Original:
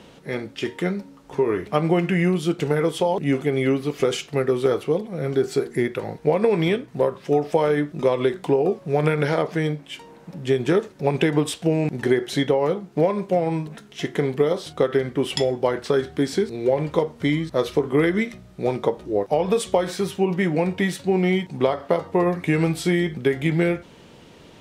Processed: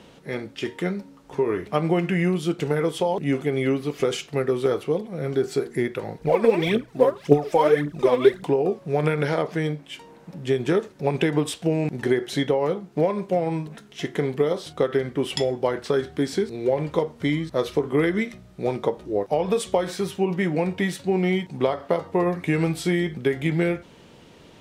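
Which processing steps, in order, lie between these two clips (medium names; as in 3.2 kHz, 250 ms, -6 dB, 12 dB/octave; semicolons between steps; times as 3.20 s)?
6.21–8.44 s: phaser 1.8 Hz, delay 4.3 ms, feedback 71%; trim -2 dB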